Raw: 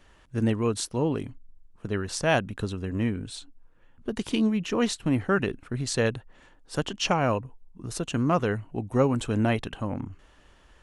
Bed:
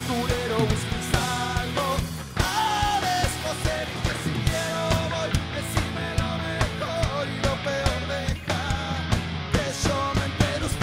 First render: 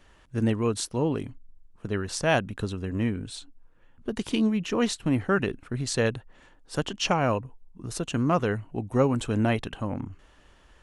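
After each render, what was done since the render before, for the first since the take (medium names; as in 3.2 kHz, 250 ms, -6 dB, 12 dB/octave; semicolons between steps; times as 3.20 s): no audible change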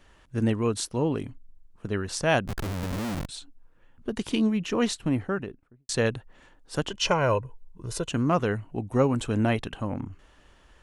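2.47–3.29 s: Schmitt trigger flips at -35 dBFS; 4.90–5.89 s: studio fade out; 6.89–8.10 s: comb 2 ms, depth 61%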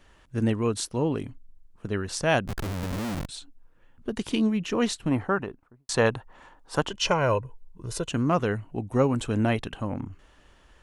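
5.11–6.88 s: peaking EQ 960 Hz +11 dB 1.2 oct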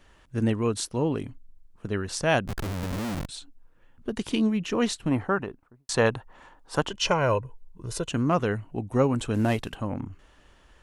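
9.34–9.75 s: CVSD coder 64 kbps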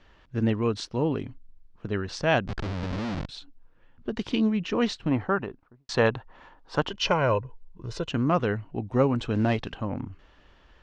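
low-pass 5.2 kHz 24 dB/octave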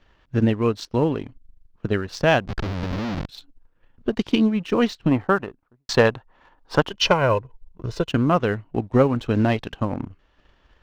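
transient shaper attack +5 dB, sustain -4 dB; waveshaping leveller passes 1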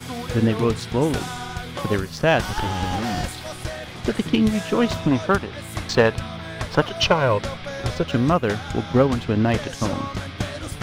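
add bed -5 dB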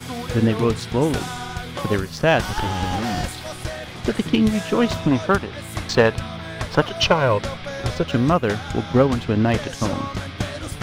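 trim +1 dB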